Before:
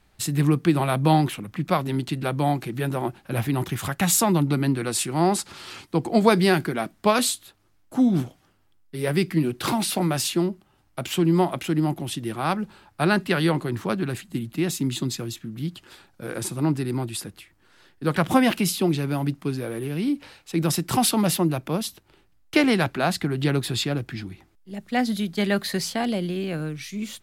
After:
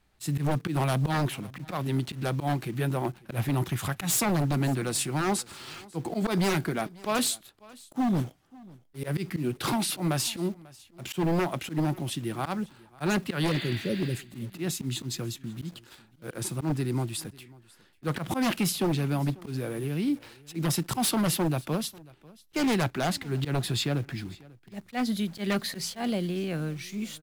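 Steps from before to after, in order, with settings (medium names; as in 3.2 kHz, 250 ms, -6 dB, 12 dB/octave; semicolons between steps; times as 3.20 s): dynamic bell 130 Hz, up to +3 dB, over -40 dBFS, Q 2.8; slow attack 101 ms; spectral replace 13.50–14.12 s, 610–5200 Hz both; in parallel at -5.5 dB: bit crusher 7-bit; on the sum: wavefolder -13 dBFS; on a send: delay 543 ms -23 dB; on the sum: trim -7 dB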